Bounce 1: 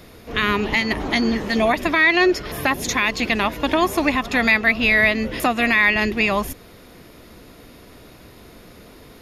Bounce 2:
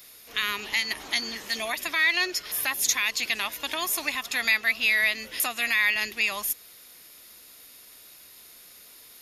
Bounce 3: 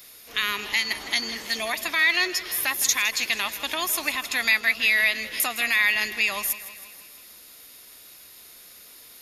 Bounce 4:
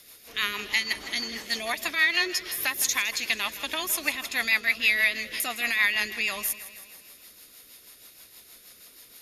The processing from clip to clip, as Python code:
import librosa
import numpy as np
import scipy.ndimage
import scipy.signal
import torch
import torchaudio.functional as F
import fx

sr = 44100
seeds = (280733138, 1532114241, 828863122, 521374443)

y1 = librosa.effects.preemphasis(x, coef=0.97, zi=[0.0])
y1 = y1 * 10.0 ** (4.5 / 20.0)
y2 = fx.echo_feedback(y1, sr, ms=161, feedback_pct=59, wet_db=-15)
y2 = y2 * 10.0 ** (2.0 / 20.0)
y3 = fx.rotary(y2, sr, hz=6.3)